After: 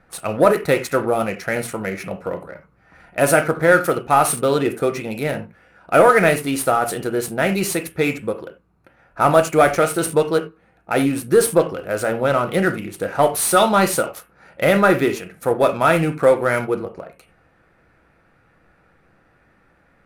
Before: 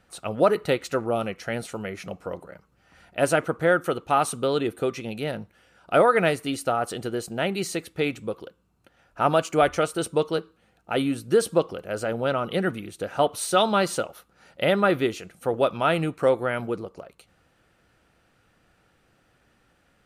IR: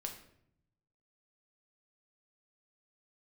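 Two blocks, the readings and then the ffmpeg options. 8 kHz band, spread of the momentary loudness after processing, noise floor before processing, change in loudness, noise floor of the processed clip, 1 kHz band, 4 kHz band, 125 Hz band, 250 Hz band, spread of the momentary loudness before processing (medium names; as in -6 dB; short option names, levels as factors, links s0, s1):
+10.0 dB, 12 LU, -65 dBFS, +6.5 dB, -58 dBFS, +6.5 dB, +2.5 dB, +6.5 dB, +6.5 dB, 13 LU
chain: -filter_complex "[0:a]aemphasis=mode=production:type=75kf,acontrast=72,asplit=2[s0][s1];[s1]asuperstop=centerf=5100:order=8:qfactor=0.82[s2];[1:a]atrim=start_sample=2205,atrim=end_sample=4410,highshelf=f=2100:g=8[s3];[s2][s3]afir=irnorm=-1:irlink=0,volume=1.78[s4];[s0][s4]amix=inputs=2:normalize=0,adynamicsmooth=sensitivity=2.5:basefreq=3000,volume=0.398"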